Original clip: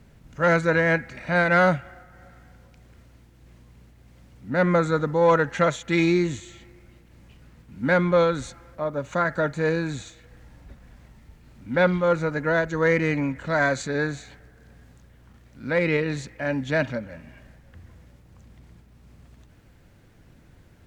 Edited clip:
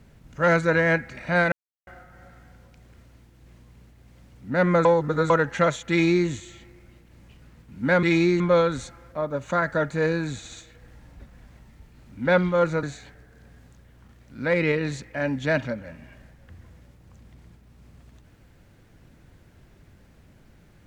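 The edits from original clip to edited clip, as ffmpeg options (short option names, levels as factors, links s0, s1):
-filter_complex "[0:a]asplit=10[s0][s1][s2][s3][s4][s5][s6][s7][s8][s9];[s0]atrim=end=1.52,asetpts=PTS-STARTPTS,afade=t=out:st=1.516:d=0.004:c=hsin[s10];[s1]atrim=start=1.52:end=1.87,asetpts=PTS-STARTPTS,volume=0[s11];[s2]atrim=start=1.87:end=4.852,asetpts=PTS-STARTPTS,afade=t=in:d=0.004:c=hsin[s12];[s3]atrim=start=4.848:end=5.302,asetpts=PTS-STARTPTS,areverse[s13];[s4]atrim=start=5.298:end=8.032[s14];[s5]atrim=start=5.898:end=6.272[s15];[s6]atrim=start=8.028:end=10.082[s16];[s7]atrim=start=10.008:end=10.082[s17];[s8]atrim=start=10.008:end=12.322[s18];[s9]atrim=start=14.078[s19];[s10][s11][s12]concat=n=3:v=0:a=1[s20];[s20][s13]acrossfade=d=0.004:c1=hsin:c2=hsin[s21];[s21][s14]acrossfade=d=0.004:c1=hsin:c2=hsin[s22];[s22][s15]acrossfade=d=0.004:c1=hsin:c2=hsin[s23];[s23][s16]acrossfade=d=0.004:c1=hsin:c2=hsin[s24];[s24][s17]acrossfade=d=0.004:c1=hsin:c2=hsin[s25];[s25][s18]acrossfade=d=0.004:c1=hsin:c2=hsin[s26];[s26][s19]acrossfade=d=0.004:c1=hsin:c2=hsin"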